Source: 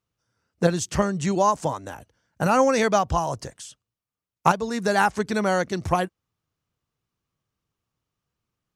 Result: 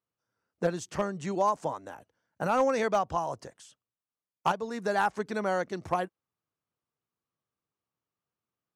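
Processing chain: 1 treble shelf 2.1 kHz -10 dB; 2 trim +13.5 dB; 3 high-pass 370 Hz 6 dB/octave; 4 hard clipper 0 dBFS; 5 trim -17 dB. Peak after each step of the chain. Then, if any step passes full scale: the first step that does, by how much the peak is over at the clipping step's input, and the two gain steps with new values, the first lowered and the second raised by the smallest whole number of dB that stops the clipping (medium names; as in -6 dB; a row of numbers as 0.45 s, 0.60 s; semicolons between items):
-5.0 dBFS, +8.5 dBFS, +7.0 dBFS, 0.0 dBFS, -17.0 dBFS; step 2, 7.0 dB; step 2 +6.5 dB, step 5 -10 dB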